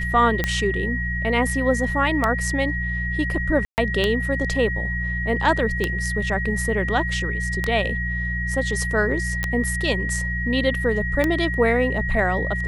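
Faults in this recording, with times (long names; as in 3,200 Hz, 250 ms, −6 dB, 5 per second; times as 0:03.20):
mains hum 60 Hz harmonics 3 −27 dBFS
scratch tick 33 1/3 rpm −7 dBFS
whistle 1,900 Hz −26 dBFS
0:03.65–0:03.78: drop-out 129 ms
0:09.43: click −12 dBFS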